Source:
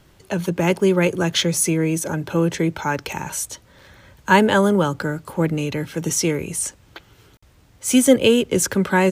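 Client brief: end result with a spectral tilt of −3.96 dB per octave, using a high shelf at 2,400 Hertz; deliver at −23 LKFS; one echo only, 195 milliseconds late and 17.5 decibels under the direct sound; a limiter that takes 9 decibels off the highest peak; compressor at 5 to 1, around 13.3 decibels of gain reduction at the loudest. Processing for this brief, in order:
high-shelf EQ 2,400 Hz +4.5 dB
downward compressor 5 to 1, threshold −24 dBFS
brickwall limiter −20.5 dBFS
single-tap delay 195 ms −17.5 dB
level +7 dB

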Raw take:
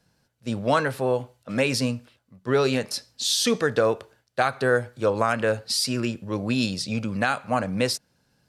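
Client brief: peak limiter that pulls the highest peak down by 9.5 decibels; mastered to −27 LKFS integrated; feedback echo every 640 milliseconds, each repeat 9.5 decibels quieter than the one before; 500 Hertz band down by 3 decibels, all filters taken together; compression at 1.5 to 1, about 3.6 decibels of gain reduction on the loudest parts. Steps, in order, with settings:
parametric band 500 Hz −3.5 dB
downward compressor 1.5 to 1, threshold −28 dBFS
brickwall limiter −20 dBFS
repeating echo 640 ms, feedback 33%, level −9.5 dB
level +4 dB

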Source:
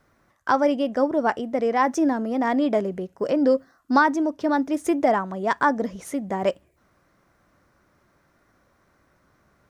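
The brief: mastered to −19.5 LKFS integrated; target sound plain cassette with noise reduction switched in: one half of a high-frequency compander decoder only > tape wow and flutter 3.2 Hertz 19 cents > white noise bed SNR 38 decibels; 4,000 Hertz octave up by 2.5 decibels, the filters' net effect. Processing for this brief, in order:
parametric band 4,000 Hz +3.5 dB
one half of a high-frequency compander decoder only
tape wow and flutter 3.2 Hz 19 cents
white noise bed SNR 38 dB
level +3.5 dB

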